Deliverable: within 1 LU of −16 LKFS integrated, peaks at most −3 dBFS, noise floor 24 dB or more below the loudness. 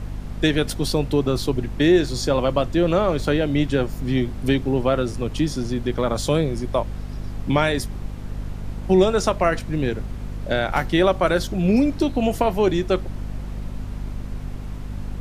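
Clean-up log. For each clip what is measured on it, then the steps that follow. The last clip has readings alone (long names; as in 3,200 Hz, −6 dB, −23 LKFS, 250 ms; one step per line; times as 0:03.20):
mains hum 50 Hz; hum harmonics up to 250 Hz; level of the hum −29 dBFS; background noise floor −33 dBFS; target noise floor −46 dBFS; integrated loudness −21.5 LKFS; sample peak −4.0 dBFS; target loudness −16.0 LKFS
→ mains-hum notches 50/100/150/200/250 Hz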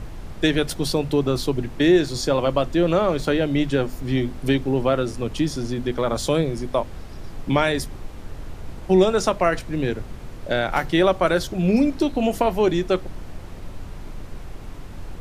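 mains hum none found; background noise floor −37 dBFS; target noise floor −46 dBFS
→ noise reduction from a noise print 9 dB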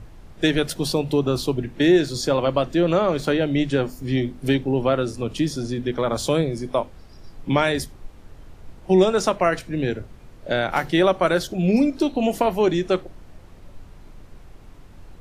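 background noise floor −45 dBFS; target noise floor −46 dBFS
→ noise reduction from a noise print 6 dB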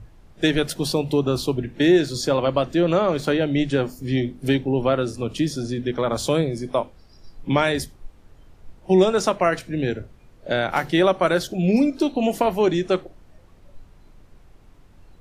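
background noise floor −51 dBFS; integrated loudness −22.0 LKFS; sample peak −5.0 dBFS; target loudness −16.0 LKFS
→ level +6 dB
brickwall limiter −3 dBFS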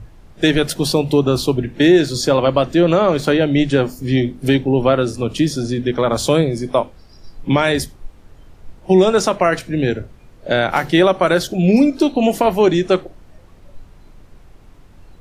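integrated loudness −16.5 LKFS; sample peak −3.0 dBFS; background noise floor −45 dBFS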